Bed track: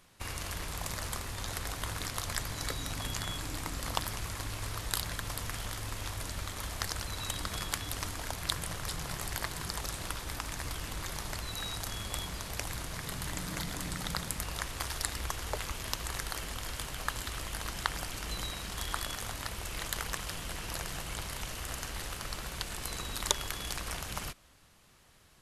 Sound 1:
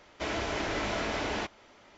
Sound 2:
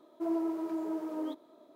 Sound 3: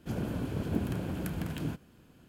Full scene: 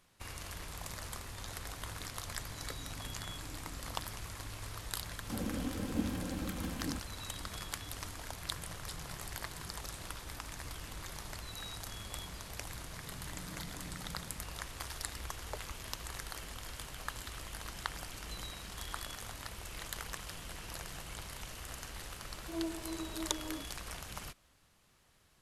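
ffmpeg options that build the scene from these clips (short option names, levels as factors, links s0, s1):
-filter_complex "[0:a]volume=0.473[s0];[3:a]aecho=1:1:3.8:0.85[s1];[2:a]flanger=delay=18:depth=2.3:speed=3[s2];[s1]atrim=end=2.28,asetpts=PTS-STARTPTS,volume=0.501,afade=t=in:d=0.004:c=hsin,afade=t=out:st=2.276:d=0.004:c=hsin,adelay=5230[s3];[s2]atrim=end=1.75,asetpts=PTS-STARTPTS,volume=0.531,afade=t=in:d=0.004:c=hsin,afade=t=out:st=1.746:d=0.004:c=hsin,adelay=982548S[s4];[s0][s3][s4]amix=inputs=3:normalize=0"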